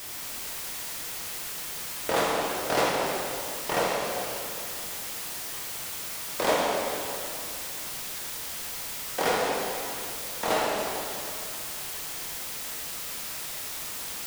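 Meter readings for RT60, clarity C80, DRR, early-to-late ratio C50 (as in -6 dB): 2.7 s, 0.5 dB, -3.5 dB, -1.0 dB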